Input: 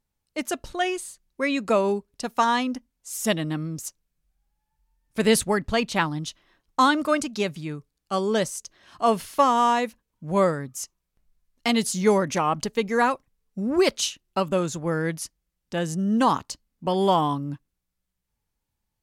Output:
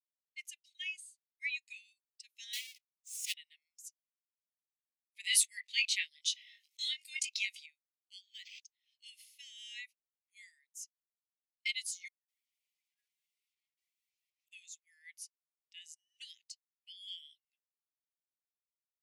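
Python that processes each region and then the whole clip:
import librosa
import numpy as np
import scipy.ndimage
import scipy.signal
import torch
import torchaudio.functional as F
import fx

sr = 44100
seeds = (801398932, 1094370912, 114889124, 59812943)

y = fx.chain(x, sr, fx.halfwave_hold(),
    fx.fixed_phaser(hz=450.0, stages=4), at=(2.53, 3.34))
y = fx.chain(y, sr, fx.doubler(ms=20.0, db=-4.5),
    fx.env_flatten(amount_pct=50), at=(5.24, 7.66))
y = fx.chain(y, sr, fx.highpass(hz=1500.0, slope=12),
    fx.resample_linear(factor=4), at=(8.21, 8.62))
y = fx.chain(y, sr, fx.gaussian_blur(sigma=10.0),
    fx.echo_crushed(ms=205, feedback_pct=35, bits=8, wet_db=-9.0), at=(12.08, 14.46))
y = scipy.signal.sosfilt(scipy.signal.butter(12, 2000.0, 'highpass', fs=sr, output='sos'), y)
y = fx.spectral_expand(y, sr, expansion=1.5)
y = y * 10.0 ** (-6.0 / 20.0)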